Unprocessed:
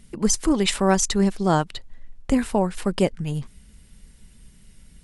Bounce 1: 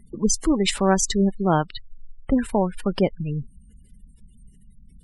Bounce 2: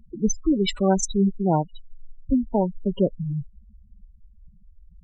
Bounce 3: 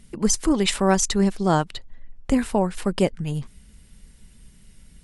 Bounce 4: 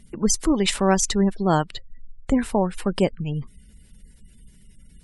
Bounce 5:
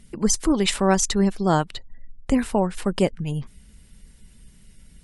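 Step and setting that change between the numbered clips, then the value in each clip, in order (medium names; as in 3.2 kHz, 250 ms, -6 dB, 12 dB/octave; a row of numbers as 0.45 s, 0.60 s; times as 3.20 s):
spectral gate, under each frame's peak: -25 dB, -10 dB, -60 dB, -35 dB, -45 dB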